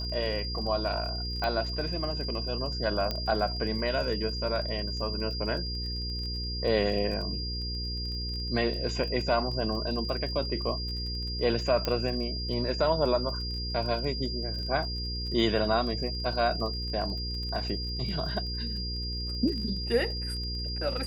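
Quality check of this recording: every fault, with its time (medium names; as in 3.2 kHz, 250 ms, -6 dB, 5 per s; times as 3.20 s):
crackle 27 per s -37 dBFS
hum 60 Hz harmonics 8 -35 dBFS
whine 4.8 kHz -35 dBFS
1.44 s: pop -19 dBFS
3.11 s: pop -16 dBFS
11.85 s: pop -14 dBFS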